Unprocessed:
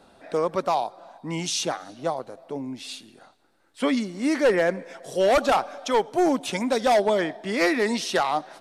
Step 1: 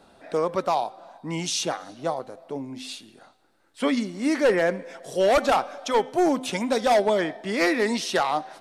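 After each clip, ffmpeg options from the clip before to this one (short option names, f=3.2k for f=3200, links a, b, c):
-af "bandreject=f=257:t=h:w=4,bandreject=f=514:t=h:w=4,bandreject=f=771:t=h:w=4,bandreject=f=1.028k:t=h:w=4,bandreject=f=1.285k:t=h:w=4,bandreject=f=1.542k:t=h:w=4,bandreject=f=1.799k:t=h:w=4,bandreject=f=2.056k:t=h:w=4,bandreject=f=2.313k:t=h:w=4,bandreject=f=2.57k:t=h:w=4,bandreject=f=2.827k:t=h:w=4,bandreject=f=3.084k:t=h:w=4,bandreject=f=3.341k:t=h:w=4,bandreject=f=3.598k:t=h:w=4,bandreject=f=3.855k:t=h:w=4"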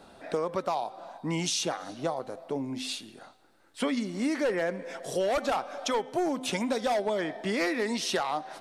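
-af "acompressor=threshold=-29dB:ratio=4,volume=2dB"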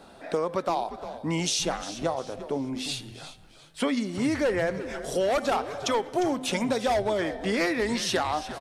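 -filter_complex "[0:a]asplit=4[a][b][c][d];[b]adelay=352,afreqshift=-140,volume=-13dB[e];[c]adelay=704,afreqshift=-280,volume=-22.6dB[f];[d]adelay=1056,afreqshift=-420,volume=-32.3dB[g];[a][e][f][g]amix=inputs=4:normalize=0,volume=2.5dB"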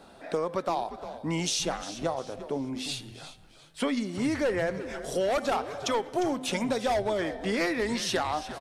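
-af "aeval=exprs='0.237*(cos(1*acos(clip(val(0)/0.237,-1,1)))-cos(1*PI/2))+0.00299*(cos(6*acos(clip(val(0)/0.237,-1,1)))-cos(6*PI/2))':c=same,volume=-2dB"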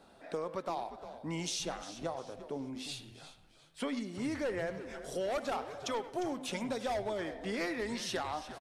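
-filter_complex "[0:a]asplit=2[a][b];[b]adelay=100,highpass=300,lowpass=3.4k,asoftclip=type=hard:threshold=-25dB,volume=-13dB[c];[a][c]amix=inputs=2:normalize=0,volume=-8dB"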